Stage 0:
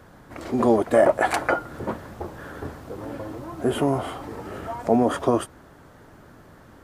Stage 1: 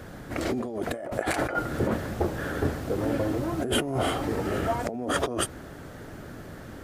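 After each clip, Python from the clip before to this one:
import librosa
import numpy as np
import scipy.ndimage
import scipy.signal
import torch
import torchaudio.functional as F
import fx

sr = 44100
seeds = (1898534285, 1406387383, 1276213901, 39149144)

y = fx.over_compress(x, sr, threshold_db=-29.0, ratio=-1.0)
y = fx.peak_eq(y, sr, hz=1000.0, db=-7.5, octaves=0.65)
y = y * 10.0 ** (2.5 / 20.0)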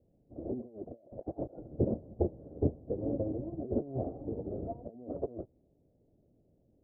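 y = (np.mod(10.0 ** (13.0 / 20.0) * x + 1.0, 2.0) - 1.0) / 10.0 ** (13.0 / 20.0)
y = scipy.signal.sosfilt(scipy.signal.butter(6, 650.0, 'lowpass', fs=sr, output='sos'), y)
y = fx.upward_expand(y, sr, threshold_db=-40.0, expansion=2.5)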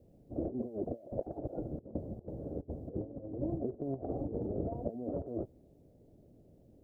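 y = fx.over_compress(x, sr, threshold_db=-40.0, ratio=-0.5)
y = y * 10.0 ** (3.0 / 20.0)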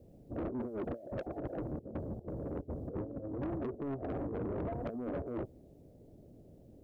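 y = 10.0 ** (-37.0 / 20.0) * np.tanh(x / 10.0 ** (-37.0 / 20.0))
y = y * 10.0 ** (4.0 / 20.0)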